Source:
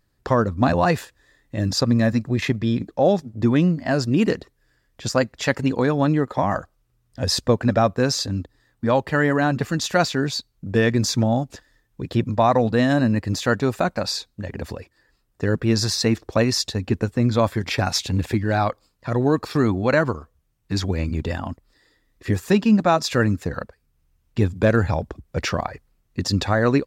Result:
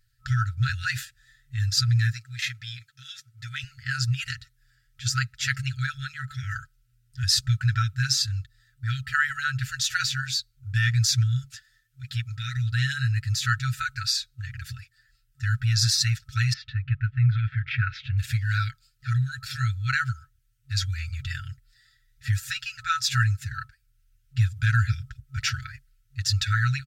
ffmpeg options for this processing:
-filter_complex "[0:a]asettb=1/sr,asplit=3[a][b][c];[a]atrim=end=2.124[d];[b]atrim=start=2.12:end=3.64,asetpts=PTS-STARTPTS,afade=t=in:d=0.004:c=qsin,afade=t=out:st=1.516:d=0.004:c=qsin,highpass=f=740:p=1[e];[c]atrim=start=3.636[f];[d][e]acrossfade=d=0.004:c1=hsin:c2=qsin[g];[g][f]acrossfade=d=0.004:c1=qsin:c2=hsin,asettb=1/sr,asplit=3[h][i][j];[h]atrim=end=11.444[k];[i]atrim=start=11.44:end=12.57,asetpts=PTS-STARTPTS,afade=t=in:d=0.004:c=qsin,afade=t=out:st=1.126:d=0.004:c=qsin,lowshelf=f=130:g=-11.5[l];[j]atrim=start=12.566[m];[k][l]acrossfade=d=0.004:c1=hsin:c2=qsin[n];[n][m]acrossfade=d=0.004:c1=qsin:c2=hsin,asettb=1/sr,asplit=3[o][p][q];[o]atrim=end=16.534[r];[p]atrim=start=16.53:end=18.18,asetpts=PTS-STARTPTS,afade=t=in:d=0.004:c=qsin,afade=t=out:st=1.646:d=0.004:c=qsin,lowpass=f=2.6k:w=0.5412,lowpass=f=2.6k:w=1.3066[s];[q]atrim=start=18.176[t];[r][s]acrossfade=d=0.004:c1=hsin:c2=qsin[u];[u][t]acrossfade=d=0.004:c1=qsin:c2=hsin,afftfilt=real='re*(1-between(b*sr/4096,130,1300))':imag='im*(1-between(b*sr/4096,130,1300))':win_size=4096:overlap=0.75,equalizer=f=2.1k:t=o:w=0.73:g=-3.5,aecho=1:1:6.8:0.59"

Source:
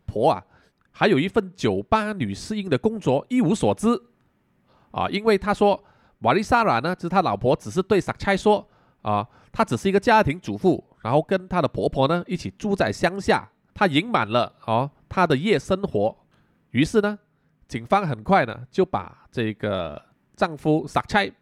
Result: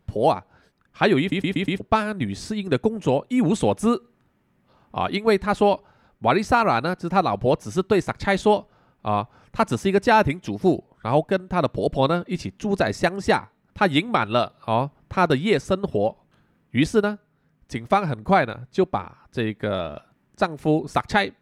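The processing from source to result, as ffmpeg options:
-filter_complex "[0:a]asplit=6[a][b][c][d][e][f];[a]atrim=end=1.322[g];[b]atrim=start=1.198:end=1.322[h];[c]atrim=start=1.198:end=1.322[i];[d]atrim=start=1.198:end=1.322[j];[e]atrim=start=1.198:end=1.322[k];[f]atrim=start=1.798[l];[g][h]acrossfade=d=0.004:c1=hsin:c2=hsin[m];[m][i]acrossfade=d=0.004:c1=hsin:c2=hsin[n];[n][j]acrossfade=d=0.004:c1=hsin:c2=hsin[o];[o][k]acrossfade=d=0.004:c1=hsin:c2=hsin[p];[p][l]acrossfade=d=0.004:c1=hsin:c2=hsin"

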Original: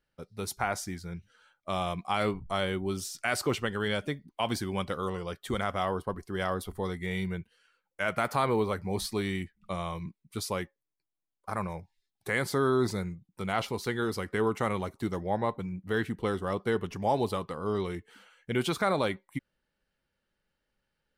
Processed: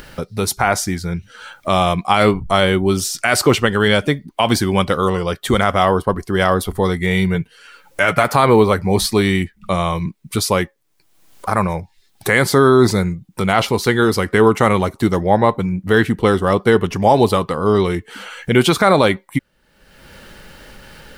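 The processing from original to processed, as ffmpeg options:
-filter_complex "[0:a]asettb=1/sr,asplit=3[a][b][c];[a]atrim=end=7.344[d];[b]atrim=start=7.34:end=8.24,asetpts=PTS-STARTPTS,afade=t=in:d=0.004:c=qsin,afade=t=out:st=0.896:d=0.004:c=qsin,aecho=1:1:7:0.56,atrim=end_sample=39690[e];[c]atrim=start=8.236[f];[d][e]acrossfade=d=0.004:c1=hsin:c2=qsin[g];[g][f]acrossfade=d=0.004:c1=qsin:c2=hsin,acompressor=mode=upward:threshold=-35dB:ratio=2.5,alimiter=level_in=17dB:limit=-1dB:release=50:level=0:latency=1,volume=-1dB"

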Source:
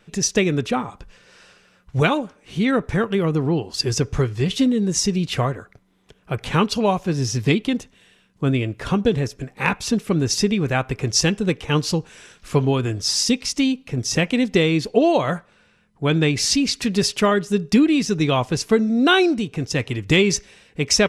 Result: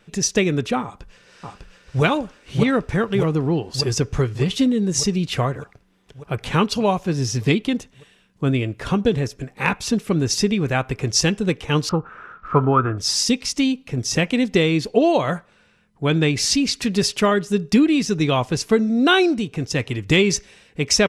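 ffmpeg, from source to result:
-filter_complex "[0:a]asplit=2[a][b];[b]afade=t=in:st=0.83:d=0.01,afade=t=out:st=2.03:d=0.01,aecho=0:1:600|1200|1800|2400|3000|3600|4200|4800|5400|6000|6600|7200:0.841395|0.588977|0.412284|0.288599|0.202019|0.141413|0.0989893|0.0692925|0.0485048|0.0339533|0.0237673|0.0166371[c];[a][c]amix=inputs=2:normalize=0,asettb=1/sr,asplit=3[d][e][f];[d]atrim=end=11.894[g];[e]atrim=start=11.89:end=12.98,asetpts=PTS-STARTPTS,afade=t=in:d=0.004:c=qsin,afade=t=out:st=1.086:d=0.004:c=qsin,lowpass=f=1.3k:t=q:w=15[h];[f]atrim=start=12.976[i];[g][h]acrossfade=d=0.004:c1=hsin:c2=qsin[j];[j][i]acrossfade=d=0.004:c1=qsin:c2=hsin"

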